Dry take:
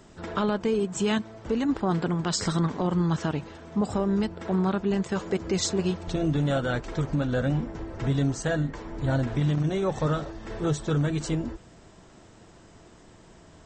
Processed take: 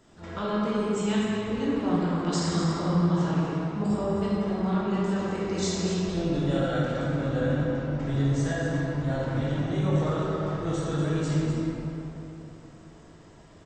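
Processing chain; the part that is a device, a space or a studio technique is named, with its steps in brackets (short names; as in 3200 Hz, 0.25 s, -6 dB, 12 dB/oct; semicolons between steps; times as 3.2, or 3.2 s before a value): cave (echo 0.245 s -9.5 dB; reverb RT60 3.2 s, pre-delay 13 ms, DRR -7 dB); gain -8.5 dB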